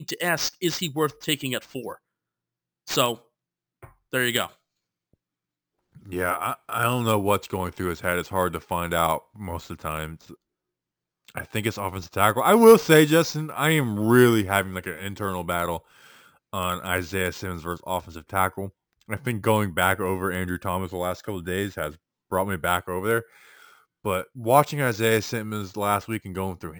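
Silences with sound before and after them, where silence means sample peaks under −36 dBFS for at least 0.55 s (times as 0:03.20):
0:01.95–0:02.88
0:03.15–0:03.84
0:04.47–0:06.07
0:10.34–0:11.28
0:15.78–0:16.54
0:23.22–0:24.05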